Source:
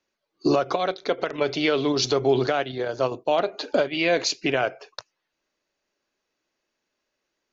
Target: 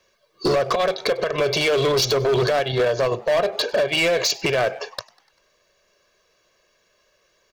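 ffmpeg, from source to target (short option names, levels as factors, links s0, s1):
-filter_complex "[0:a]aecho=1:1:1.8:0.8,asplit=2[s0][s1];[s1]acompressor=threshold=0.0224:ratio=4,volume=1[s2];[s0][s2]amix=inputs=2:normalize=0,alimiter=limit=0.178:level=0:latency=1:release=142,asoftclip=type=hard:threshold=0.0708,asplit=5[s3][s4][s5][s6][s7];[s4]adelay=98,afreqshift=97,volume=0.0631[s8];[s5]adelay=196,afreqshift=194,volume=0.0359[s9];[s6]adelay=294,afreqshift=291,volume=0.0204[s10];[s7]adelay=392,afreqshift=388,volume=0.0117[s11];[s3][s8][s9][s10][s11]amix=inputs=5:normalize=0,volume=2.37"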